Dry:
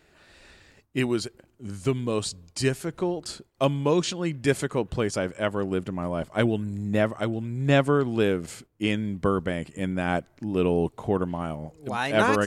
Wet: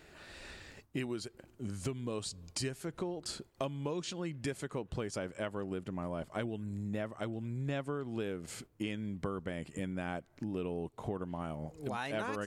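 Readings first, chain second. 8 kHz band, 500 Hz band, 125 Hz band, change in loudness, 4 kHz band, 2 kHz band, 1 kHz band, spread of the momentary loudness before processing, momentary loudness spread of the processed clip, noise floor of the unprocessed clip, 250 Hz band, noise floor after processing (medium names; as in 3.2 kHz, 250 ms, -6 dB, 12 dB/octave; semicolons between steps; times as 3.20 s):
-8.5 dB, -13.5 dB, -11.5 dB, -12.5 dB, -11.0 dB, -13.5 dB, -13.0 dB, 9 LU, 6 LU, -62 dBFS, -12.0 dB, -65 dBFS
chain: compression 5:1, threshold -39 dBFS, peak gain reduction 20.5 dB; trim +2.5 dB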